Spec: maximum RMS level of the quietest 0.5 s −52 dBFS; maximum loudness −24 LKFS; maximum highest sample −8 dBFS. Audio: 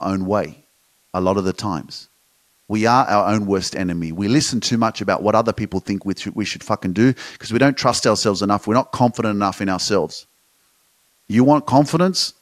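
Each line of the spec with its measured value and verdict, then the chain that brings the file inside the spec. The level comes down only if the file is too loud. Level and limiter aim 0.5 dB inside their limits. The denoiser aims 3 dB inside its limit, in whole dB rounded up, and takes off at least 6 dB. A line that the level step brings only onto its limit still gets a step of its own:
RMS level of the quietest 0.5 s −61 dBFS: in spec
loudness −18.5 LKFS: out of spec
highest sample −1.5 dBFS: out of spec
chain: level −6 dB
brickwall limiter −8.5 dBFS

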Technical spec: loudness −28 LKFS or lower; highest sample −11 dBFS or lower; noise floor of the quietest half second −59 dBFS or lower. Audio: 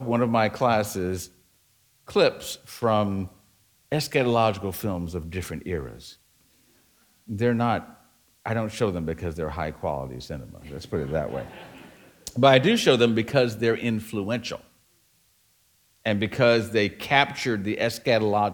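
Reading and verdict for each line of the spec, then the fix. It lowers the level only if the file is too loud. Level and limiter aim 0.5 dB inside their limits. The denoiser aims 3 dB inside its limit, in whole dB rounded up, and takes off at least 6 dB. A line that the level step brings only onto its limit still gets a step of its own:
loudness −24.5 LKFS: out of spec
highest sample −3.5 dBFS: out of spec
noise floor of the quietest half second −64 dBFS: in spec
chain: level −4 dB
brickwall limiter −11.5 dBFS

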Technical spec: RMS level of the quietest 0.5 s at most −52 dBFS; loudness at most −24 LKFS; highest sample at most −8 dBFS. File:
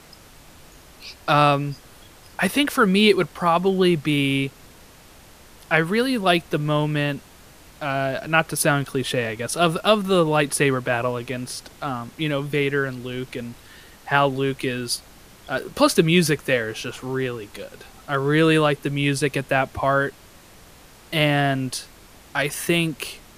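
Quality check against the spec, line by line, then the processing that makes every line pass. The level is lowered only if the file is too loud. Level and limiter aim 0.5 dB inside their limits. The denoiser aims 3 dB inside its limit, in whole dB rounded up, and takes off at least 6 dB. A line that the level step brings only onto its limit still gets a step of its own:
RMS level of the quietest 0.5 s −48 dBFS: out of spec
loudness −21.5 LKFS: out of spec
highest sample −2.5 dBFS: out of spec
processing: broadband denoise 6 dB, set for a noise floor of −48 dBFS
level −3 dB
brickwall limiter −8.5 dBFS

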